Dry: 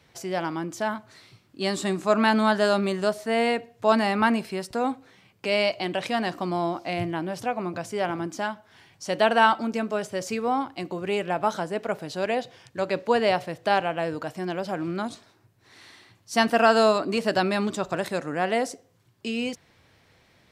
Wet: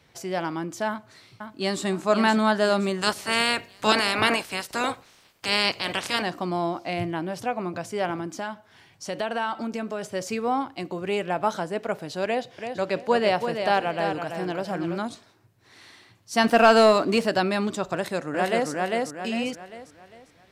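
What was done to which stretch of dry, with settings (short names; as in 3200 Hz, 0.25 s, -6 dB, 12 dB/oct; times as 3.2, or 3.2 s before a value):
0.88–1.85 echo throw 0.52 s, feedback 45%, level -7 dB
3.01–6.21 spectral limiter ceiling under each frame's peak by 23 dB
8.17–10.06 compressor 2.5:1, threshold -27 dBFS
12.25–14.98 feedback echo 0.333 s, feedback 25%, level -7 dB
16.44–17.26 sample leveller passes 1
17.94–18.7 echo throw 0.4 s, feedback 40%, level -1.5 dB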